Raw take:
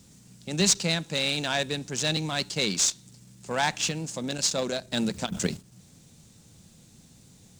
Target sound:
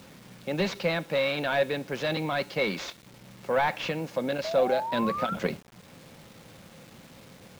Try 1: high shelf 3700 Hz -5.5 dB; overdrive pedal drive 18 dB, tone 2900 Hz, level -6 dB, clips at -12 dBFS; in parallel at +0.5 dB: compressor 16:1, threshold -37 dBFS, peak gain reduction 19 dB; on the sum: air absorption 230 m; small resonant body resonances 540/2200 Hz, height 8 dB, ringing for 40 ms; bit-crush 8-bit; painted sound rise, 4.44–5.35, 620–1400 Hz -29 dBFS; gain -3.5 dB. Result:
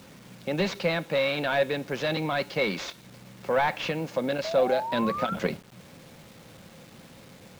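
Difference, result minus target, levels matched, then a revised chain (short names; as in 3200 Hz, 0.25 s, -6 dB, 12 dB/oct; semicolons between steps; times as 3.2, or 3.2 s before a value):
compressor: peak gain reduction -11 dB
high shelf 3700 Hz -5.5 dB; overdrive pedal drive 18 dB, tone 2900 Hz, level -6 dB, clips at -12 dBFS; in parallel at +0.5 dB: compressor 16:1, threshold -49 dBFS, peak gain reduction 30.5 dB; on the sum: air absorption 230 m; small resonant body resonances 540/2200 Hz, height 8 dB, ringing for 40 ms; bit-crush 8-bit; painted sound rise, 4.44–5.35, 620–1400 Hz -29 dBFS; gain -3.5 dB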